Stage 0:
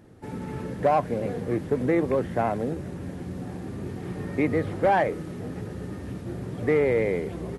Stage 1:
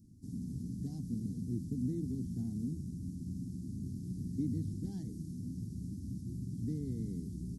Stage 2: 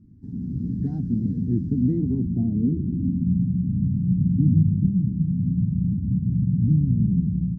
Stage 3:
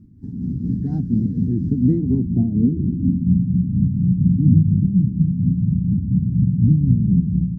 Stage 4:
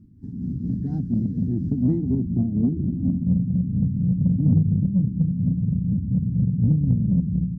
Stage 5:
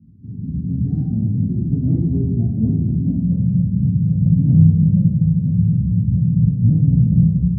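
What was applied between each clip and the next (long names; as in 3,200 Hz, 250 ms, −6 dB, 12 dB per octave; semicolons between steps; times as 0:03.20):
elliptic band-stop filter 250–5,300 Hz, stop band 40 dB; level −4.5 dB
low-pass filter sweep 1,500 Hz → 170 Hz, 0:01.81–0:03.41; automatic gain control gain up to 6 dB; phaser whose notches keep moving one way falling 1.6 Hz; level +8 dB
amplitude tremolo 4.2 Hz, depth 48%; level +6.5 dB
in parallel at −6 dB: soft clipping −11.5 dBFS, distortion −15 dB; on the sum: feedback echo with a high-pass in the loop 1,108 ms, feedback 46%, level −21 dB; level −7 dB
flanger 1.9 Hz, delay 3.8 ms, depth 5.9 ms, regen −52%; convolution reverb RT60 1.0 s, pre-delay 3 ms, DRR −8.5 dB; downsampling to 16,000 Hz; level −17.5 dB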